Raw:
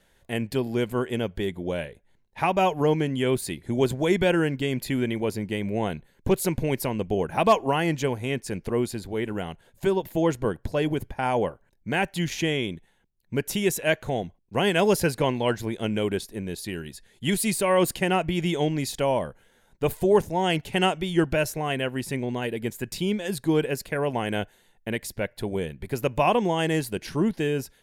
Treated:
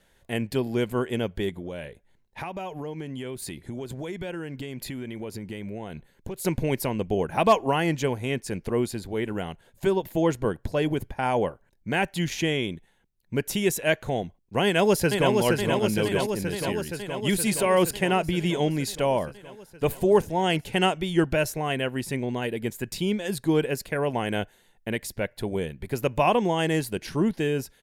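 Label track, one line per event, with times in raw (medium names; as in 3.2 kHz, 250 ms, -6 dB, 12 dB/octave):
1.490000	6.450000	compression, threshold -31 dBFS
14.640000	15.320000	echo throw 470 ms, feedback 75%, level -3.5 dB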